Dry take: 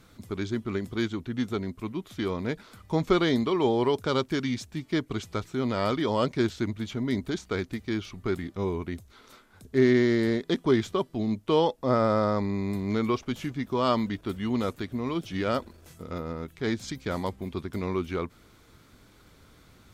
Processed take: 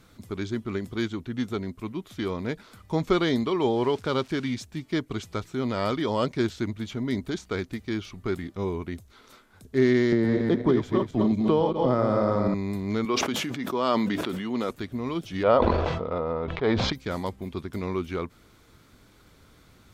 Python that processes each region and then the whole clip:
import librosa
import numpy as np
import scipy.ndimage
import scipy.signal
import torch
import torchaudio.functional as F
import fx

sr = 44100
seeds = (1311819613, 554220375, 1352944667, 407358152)

y = fx.chain(x, sr, fx.crossing_spikes(level_db=-30.5),
    fx.lowpass(hz=4300.0, slope=12), at=(3.76, 4.54))
y = fx.chain(y, sr, fx.reverse_delay_fb(ms=124, feedback_pct=47, wet_db=-4.5),
    fx.high_shelf(hz=2000.0, db=-11.5),
    fx.band_squash(depth_pct=100), at=(10.12, 12.54))
y = fx.chain(y, sr, fx.highpass(hz=220.0, slope=12),
    fx.high_shelf(hz=6000.0, db=-5.0),
    fx.sustainer(db_per_s=20.0), at=(13.05, 14.71))
y = fx.chain(y, sr, fx.lowpass(hz=3800.0, slope=24),
    fx.band_shelf(hz=720.0, db=9.5, octaves=1.7),
    fx.sustainer(db_per_s=27.0), at=(15.43, 16.93))